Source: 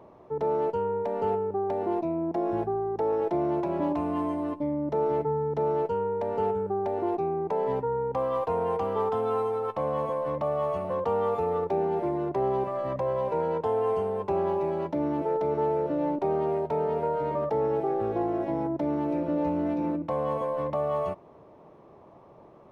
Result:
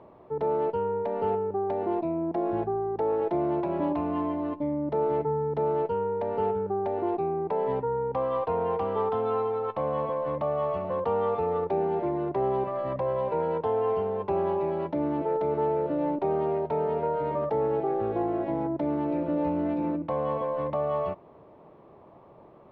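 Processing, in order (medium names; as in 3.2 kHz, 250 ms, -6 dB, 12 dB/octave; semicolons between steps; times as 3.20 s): low-pass 4.2 kHz 24 dB/octave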